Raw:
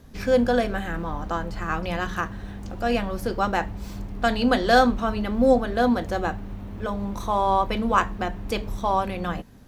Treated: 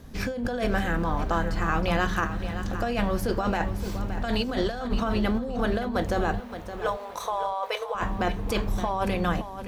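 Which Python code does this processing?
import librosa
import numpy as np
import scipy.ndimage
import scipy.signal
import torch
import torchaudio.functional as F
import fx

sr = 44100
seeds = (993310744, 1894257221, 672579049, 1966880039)

y = fx.over_compress(x, sr, threshold_db=-26.0, ratio=-1.0)
y = fx.brickwall_highpass(y, sr, low_hz=410.0, at=(6.4, 7.95))
y = fx.echo_feedback(y, sr, ms=569, feedback_pct=24, wet_db=-11.0)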